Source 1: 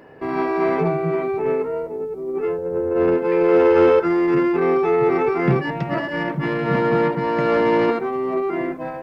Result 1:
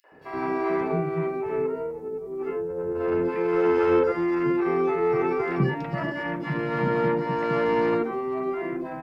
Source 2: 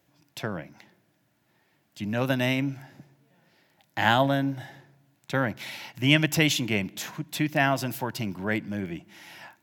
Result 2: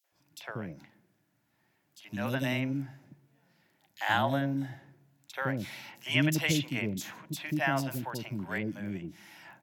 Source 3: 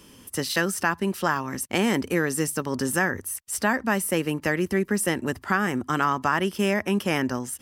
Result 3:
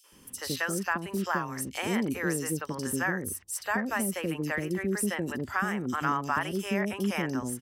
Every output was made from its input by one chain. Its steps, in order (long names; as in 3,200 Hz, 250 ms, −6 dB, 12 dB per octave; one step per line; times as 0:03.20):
three-band delay without the direct sound highs, mids, lows 40/120 ms, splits 520/3,500 Hz
level −4.5 dB